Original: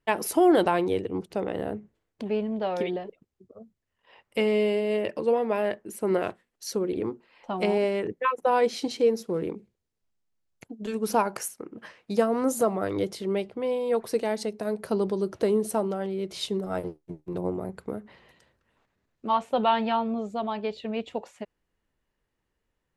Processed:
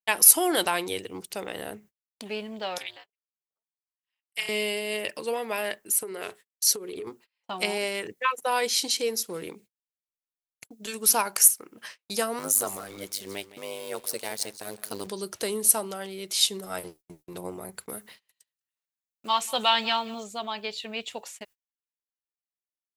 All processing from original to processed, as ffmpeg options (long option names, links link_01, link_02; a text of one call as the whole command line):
ffmpeg -i in.wav -filter_complex "[0:a]asettb=1/sr,asplit=3[link_01][link_02][link_03];[link_01]atrim=end=2.784[link_04];[link_02]atrim=start=2.78:end=4.49,asetpts=PTS-STARTPTS,afade=type=in:duration=0.004:curve=qsin,afade=type=out:start_time=1.706:duration=0.004:curve=qsin,highpass=1000,tremolo=f=250:d=0.919[link_05];[link_03]atrim=start=4.486[link_06];[link_04][link_05]acrossfade=duration=0.004:curve1=hsin:curve2=qsin[link_07];[link_07][link_06]acrossfade=duration=0.004:curve1=qsin:curve2=hsin,asettb=1/sr,asplit=3[link_08][link_09][link_10];[link_08]atrim=end=6.024[link_11];[link_09]atrim=start=6.02:end=7.07,asetpts=PTS-STARTPTS,afade=type=in:duration=0.004:curve=qsin,afade=type=out:start_time=1.046:duration=0.004:curve=qsin,equalizer=frequency=420:width_type=o:width=0.22:gain=14.5,acompressor=threshold=-25dB:ratio=20:attack=3.2:release=140:knee=1:detection=peak[link_12];[link_10]atrim=start=7.066[link_13];[link_11][link_12]acrossfade=duration=0.004:curve1=hsin:curve2=qsin[link_14];[link_14][link_13]acrossfade=duration=0.004:curve1=qsin:curve2=hsin,asettb=1/sr,asplit=3[link_15][link_16][link_17];[link_15]atrim=end=12.394[link_18];[link_16]atrim=start=12.39:end=15.07,asetpts=PTS-STARTPTS,afade=type=in:duration=0.004:curve=qsin,afade=type=out:start_time=2.676:duration=0.004:curve=qsin,aeval=exprs='sgn(val(0))*max(abs(val(0))-0.00299,0)':channel_layout=same,tremolo=f=100:d=0.947,aecho=1:1:166:0.158,atrim=end_sample=118188[link_19];[link_17]atrim=start=15.066[link_20];[link_18][link_19]acrossfade=duration=0.004:curve1=hsin:curve2=qsin[link_21];[link_21][link_20]acrossfade=duration=0.004:curve1=qsin:curve2=hsin,asettb=1/sr,asplit=3[link_22][link_23][link_24];[link_22]atrim=end=17.894[link_25];[link_23]atrim=start=17.89:end=20.24,asetpts=PTS-STARTPTS,afade=type=in:duration=0.004:curve=qsin,afade=type=out:start_time=2.346:duration=0.004:curve=qsin,highshelf=frequency=3700:gain=9,aecho=1:1:187:0.0891,atrim=end_sample=103635[link_26];[link_24]atrim=start=20.236[link_27];[link_25][link_26]acrossfade=duration=0.004:curve1=hsin:curve2=qsin[link_28];[link_28][link_27]acrossfade=duration=0.004:curve1=qsin:curve2=hsin,aemphasis=mode=production:type=75kf,agate=range=-32dB:threshold=-45dB:ratio=16:detection=peak,tiltshelf=frequency=970:gain=-7.5,volume=-2.5dB" out.wav